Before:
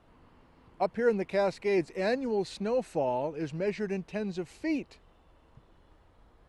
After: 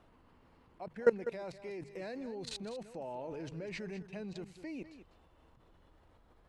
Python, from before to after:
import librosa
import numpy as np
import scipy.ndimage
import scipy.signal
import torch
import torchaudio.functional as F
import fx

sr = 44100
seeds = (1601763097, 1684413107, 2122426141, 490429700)

y = fx.level_steps(x, sr, step_db=22)
y = fx.hum_notches(y, sr, base_hz=50, count=3)
y = y + 10.0 ** (-12.5 / 20.0) * np.pad(y, (int(199 * sr / 1000.0), 0))[:len(y)]
y = y * librosa.db_to_amplitude(2.0)